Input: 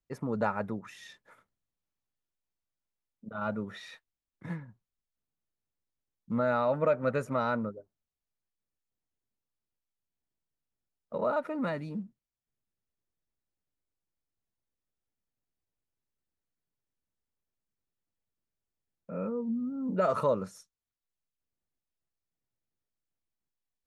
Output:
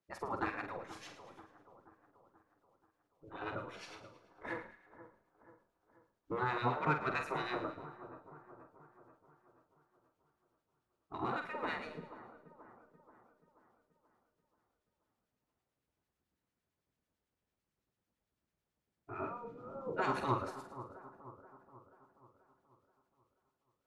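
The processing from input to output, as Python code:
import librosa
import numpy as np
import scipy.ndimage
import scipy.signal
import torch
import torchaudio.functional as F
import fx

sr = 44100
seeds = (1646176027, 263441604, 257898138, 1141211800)

p1 = fx.spec_gate(x, sr, threshold_db=-15, keep='weak')
p2 = fx.lowpass(p1, sr, hz=2100.0, slope=6)
p3 = 10.0 ** (-38.0 / 20.0) * np.tanh(p2 / 10.0 ** (-38.0 / 20.0))
p4 = p2 + F.gain(torch.from_numpy(p3), -5.0).numpy()
p5 = fx.harmonic_tremolo(p4, sr, hz=9.0, depth_pct=70, crossover_hz=1400.0)
p6 = fx.doubler(p5, sr, ms=47.0, db=-8)
p7 = fx.echo_split(p6, sr, split_hz=1400.0, low_ms=482, high_ms=109, feedback_pct=52, wet_db=-13.5)
y = F.gain(torch.from_numpy(p7), 7.0).numpy()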